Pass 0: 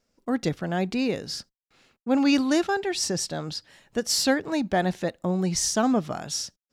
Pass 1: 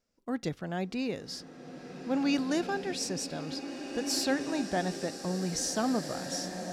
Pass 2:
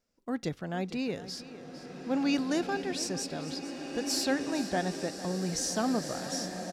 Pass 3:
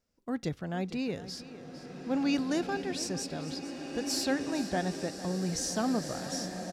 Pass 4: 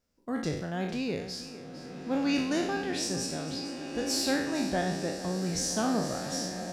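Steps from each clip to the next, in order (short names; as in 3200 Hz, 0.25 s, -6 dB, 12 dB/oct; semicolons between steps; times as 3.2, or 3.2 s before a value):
bloom reverb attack 2 s, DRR 5.5 dB; gain -7.5 dB
echo 0.453 s -14.5 dB
bell 72 Hz +6.5 dB 2.1 oct; gain -1.5 dB
spectral trails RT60 0.72 s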